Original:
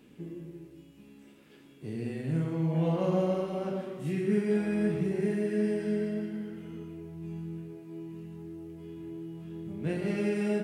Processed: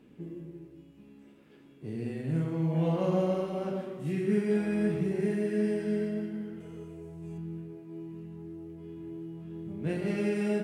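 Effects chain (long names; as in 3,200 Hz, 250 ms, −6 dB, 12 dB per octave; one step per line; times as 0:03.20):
0:06.60–0:07.38: octave-band graphic EQ 125/250/500/8,000 Hz +3/−10/+7/+12 dB
one half of a high-frequency compander decoder only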